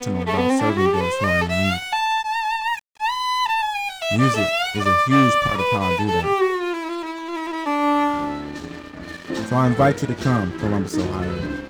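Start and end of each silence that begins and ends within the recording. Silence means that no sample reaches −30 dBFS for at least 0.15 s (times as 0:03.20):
0:02.79–0:03.00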